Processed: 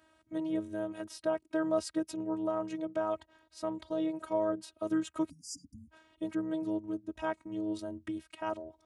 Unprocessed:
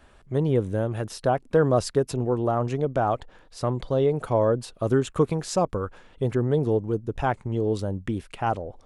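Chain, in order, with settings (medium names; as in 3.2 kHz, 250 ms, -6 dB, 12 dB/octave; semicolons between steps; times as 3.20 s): robot voice 317 Hz; high-pass 70 Hz 24 dB/octave; spectral selection erased 5.30–5.90 s, 280–4600 Hz; trim -6.5 dB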